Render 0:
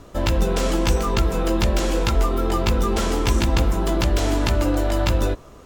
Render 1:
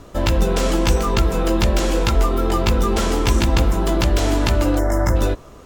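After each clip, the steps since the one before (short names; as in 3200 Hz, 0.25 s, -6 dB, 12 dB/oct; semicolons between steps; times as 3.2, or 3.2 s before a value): spectral gain 4.79–5.16, 2200–5000 Hz -23 dB; gain +2.5 dB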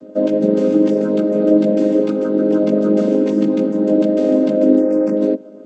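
chord vocoder major triad, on G#3; resonant low shelf 720 Hz +8.5 dB, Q 3; gain -3.5 dB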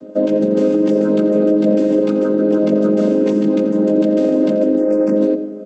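limiter -8.5 dBFS, peak gain reduction 7 dB; echo 86 ms -15 dB; on a send at -14 dB: reverb RT60 1.9 s, pre-delay 77 ms; on the sum: gain +2.5 dB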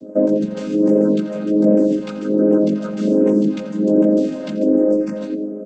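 phaser stages 2, 1.3 Hz, lowest notch 330–3900 Hz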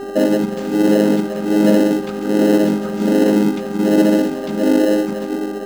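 buzz 400 Hz, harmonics 4, -29 dBFS -9 dB/oct; in parallel at -8.5 dB: sample-and-hold 38×; on the sum: gain -1 dB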